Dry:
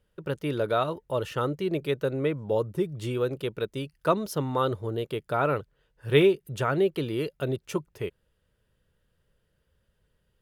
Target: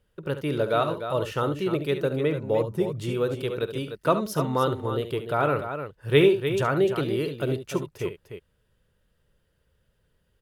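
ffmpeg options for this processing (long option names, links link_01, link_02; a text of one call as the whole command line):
ffmpeg -i in.wav -af "aecho=1:1:50|70|299:0.126|0.282|0.355,volume=1.5dB" out.wav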